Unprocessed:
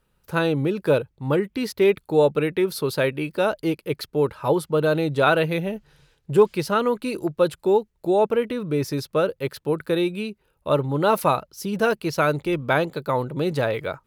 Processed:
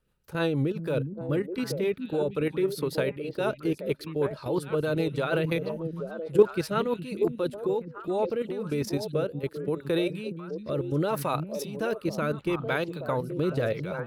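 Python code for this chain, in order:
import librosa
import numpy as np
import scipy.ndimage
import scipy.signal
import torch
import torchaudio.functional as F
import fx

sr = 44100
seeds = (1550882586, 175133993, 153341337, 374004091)

y = fx.level_steps(x, sr, step_db=12)
y = fx.echo_stepped(y, sr, ms=413, hz=180.0, octaves=1.4, feedback_pct=70, wet_db=-3.0)
y = fx.rotary_switch(y, sr, hz=6.3, then_hz=0.75, switch_at_s=7.64)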